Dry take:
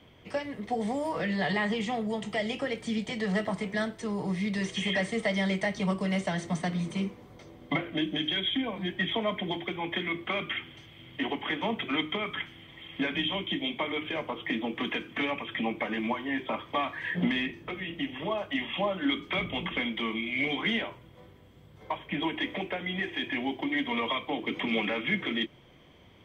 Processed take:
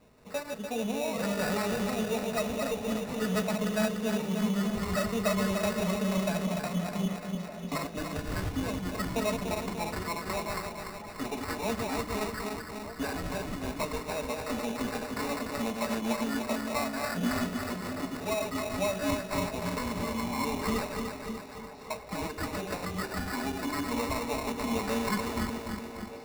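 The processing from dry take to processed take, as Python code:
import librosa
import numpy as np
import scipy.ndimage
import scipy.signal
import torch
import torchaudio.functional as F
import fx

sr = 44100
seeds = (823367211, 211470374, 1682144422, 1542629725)

y = fx.reverse_delay_fb(x, sr, ms=147, feedback_pct=75, wet_db=-4.5)
y = fx.peak_eq(y, sr, hz=550.0, db=8.0, octaves=0.29)
y = y + 0.65 * np.pad(y, (int(4.6 * sr / 1000.0), 0))[:len(y)]
y = fx.sample_hold(y, sr, seeds[0], rate_hz=3200.0, jitter_pct=0)
y = fx.echo_stepped(y, sr, ms=607, hz=250.0, octaves=1.4, feedback_pct=70, wet_db=-8.5)
y = y * 10.0 ** (-6.0 / 20.0)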